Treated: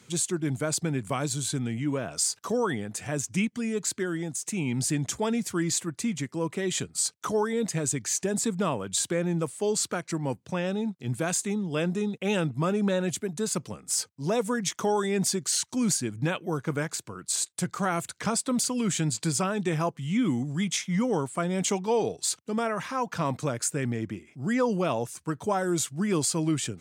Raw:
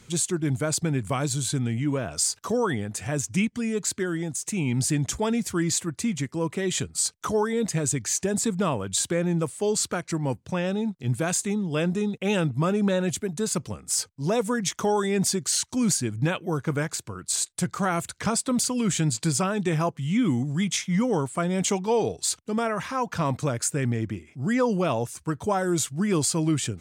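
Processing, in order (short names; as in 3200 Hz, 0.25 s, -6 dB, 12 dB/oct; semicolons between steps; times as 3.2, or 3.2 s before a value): HPF 130 Hz; gain -2 dB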